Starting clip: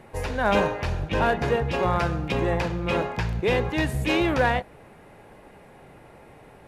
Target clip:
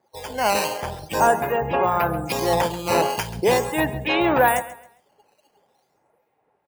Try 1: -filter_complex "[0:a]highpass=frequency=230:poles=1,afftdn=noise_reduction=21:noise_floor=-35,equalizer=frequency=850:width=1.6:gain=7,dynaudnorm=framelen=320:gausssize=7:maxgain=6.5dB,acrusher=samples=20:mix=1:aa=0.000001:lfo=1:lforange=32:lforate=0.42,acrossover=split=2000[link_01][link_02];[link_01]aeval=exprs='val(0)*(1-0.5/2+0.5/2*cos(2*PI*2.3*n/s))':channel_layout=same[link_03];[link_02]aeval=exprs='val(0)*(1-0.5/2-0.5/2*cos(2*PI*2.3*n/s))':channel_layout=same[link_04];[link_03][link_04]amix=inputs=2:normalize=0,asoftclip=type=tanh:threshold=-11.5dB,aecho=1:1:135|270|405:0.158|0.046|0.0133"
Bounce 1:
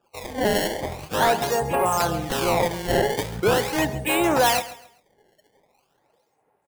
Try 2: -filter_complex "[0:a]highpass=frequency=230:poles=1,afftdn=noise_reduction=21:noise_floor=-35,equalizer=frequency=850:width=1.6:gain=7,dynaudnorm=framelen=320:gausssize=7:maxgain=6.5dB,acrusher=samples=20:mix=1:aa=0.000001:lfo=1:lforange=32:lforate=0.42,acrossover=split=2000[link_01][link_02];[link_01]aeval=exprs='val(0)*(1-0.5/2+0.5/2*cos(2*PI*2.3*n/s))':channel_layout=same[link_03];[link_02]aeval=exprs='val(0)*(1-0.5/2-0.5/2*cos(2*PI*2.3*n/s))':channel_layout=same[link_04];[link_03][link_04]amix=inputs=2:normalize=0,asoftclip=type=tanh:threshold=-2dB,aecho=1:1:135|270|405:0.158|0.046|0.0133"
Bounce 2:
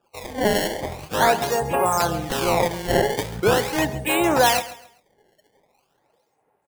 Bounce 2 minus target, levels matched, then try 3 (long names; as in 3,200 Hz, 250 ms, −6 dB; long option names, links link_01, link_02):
sample-and-hold swept by an LFO: distortion +9 dB
-filter_complex "[0:a]highpass=frequency=230:poles=1,afftdn=noise_reduction=21:noise_floor=-35,equalizer=frequency=850:width=1.6:gain=7,dynaudnorm=framelen=320:gausssize=7:maxgain=6.5dB,acrusher=samples=7:mix=1:aa=0.000001:lfo=1:lforange=11.2:lforate=0.42,acrossover=split=2000[link_01][link_02];[link_01]aeval=exprs='val(0)*(1-0.5/2+0.5/2*cos(2*PI*2.3*n/s))':channel_layout=same[link_03];[link_02]aeval=exprs='val(0)*(1-0.5/2-0.5/2*cos(2*PI*2.3*n/s))':channel_layout=same[link_04];[link_03][link_04]amix=inputs=2:normalize=0,asoftclip=type=tanh:threshold=-2dB,aecho=1:1:135|270|405:0.158|0.046|0.0133"